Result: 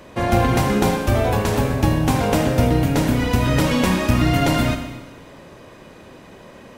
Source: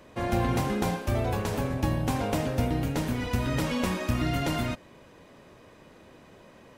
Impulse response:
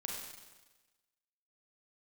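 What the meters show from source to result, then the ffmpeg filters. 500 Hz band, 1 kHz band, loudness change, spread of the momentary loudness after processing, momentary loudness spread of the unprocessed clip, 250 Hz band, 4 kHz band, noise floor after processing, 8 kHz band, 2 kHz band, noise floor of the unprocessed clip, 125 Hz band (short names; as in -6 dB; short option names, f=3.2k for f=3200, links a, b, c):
+10.0 dB, +10.0 dB, +10.0 dB, 3 LU, 3 LU, +10.0 dB, +10.0 dB, -43 dBFS, +10.0 dB, +10.0 dB, -54 dBFS, +9.5 dB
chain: -filter_complex "[0:a]asplit=2[a][b];[1:a]atrim=start_sample=2205[c];[b][c]afir=irnorm=-1:irlink=0,volume=-0.5dB[d];[a][d]amix=inputs=2:normalize=0,volume=5dB"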